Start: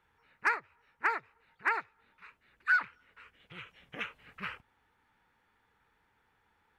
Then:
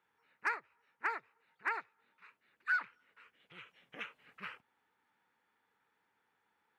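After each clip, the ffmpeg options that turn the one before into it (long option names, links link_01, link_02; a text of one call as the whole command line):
ffmpeg -i in.wav -af "highpass=190,volume=-6dB" out.wav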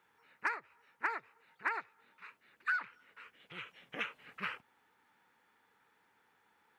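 ffmpeg -i in.wav -af "acompressor=threshold=-38dB:ratio=6,volume=7dB" out.wav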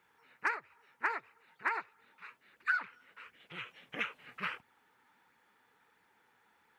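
ffmpeg -i in.wav -af "flanger=delay=0.4:depth=7.9:regen=59:speed=1.5:shape=sinusoidal,volume=6dB" out.wav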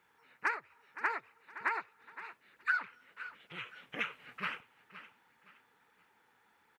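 ffmpeg -i in.wav -af "aecho=1:1:517|1034|1551:0.188|0.0565|0.017" out.wav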